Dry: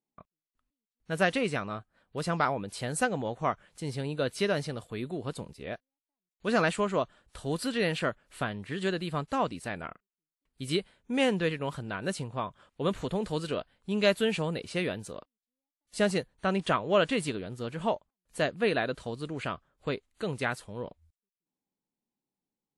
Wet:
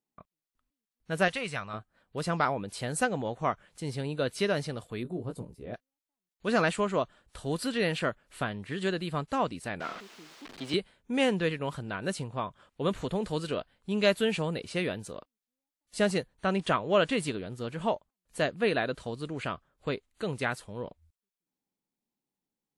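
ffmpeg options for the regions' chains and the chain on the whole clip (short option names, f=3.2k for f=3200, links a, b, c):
-filter_complex "[0:a]asettb=1/sr,asplit=3[a][b][c];[a]atrim=end=1.284[d];[b]atrim=start=1.28:end=1.74,asetpts=PTS-STARTPTS,afade=t=in:d=0.004:c=qsin,afade=t=out:st=0.456:d=0.004:c=qsin,agate=range=-33dB:threshold=-38dB:ratio=3:release=100:detection=peak,equalizer=f=320:t=o:w=1.6:g=-12[e];[c]atrim=start=1.736[f];[d][e]acrossfade=d=0.004:c1=hsin:c2=qsin[g];[g][f]acrossfade=d=0.004:c1=qsin:c2=hsin,asettb=1/sr,asplit=3[h][i][j];[h]atrim=end=5.034[k];[i]atrim=start=5.03:end=5.74,asetpts=PTS-STARTPTS,afade=t=in:d=0.004:c=qsin,afade=t=out:st=0.706:d=0.004:c=qsin,equalizer=f=3.2k:w=0.34:g=-14.5,asplit=2[l][m];[m]adelay=17,volume=-5dB[n];[l][n]amix=inputs=2:normalize=0,atrim=end_sample=31311[o];[j]atrim=start=5.736[p];[k][o]acrossfade=d=0.004:c1=hsin:c2=qsin[q];[q][p]acrossfade=d=0.004:c1=qsin:c2=hsin,asettb=1/sr,asplit=3[r][s][t];[r]atrim=end=9.804[u];[s]atrim=start=9.8:end=10.74,asetpts=PTS-STARTPTS,afade=t=in:d=0.004:c=qsin,afade=t=out:st=0.936:d=0.004:c=qsin,aeval=exprs='val(0)+0.5*0.0178*sgn(val(0))':c=same,acrossover=split=190 5700:gain=0.0891 1 0.0891[v][w][x];[v][w][x]amix=inputs=3:normalize=0[y];[t]atrim=start=10.736[z];[u][y]acrossfade=d=0.004:c1=hsin:c2=qsin[aa];[aa][z]acrossfade=d=0.004:c1=qsin:c2=hsin"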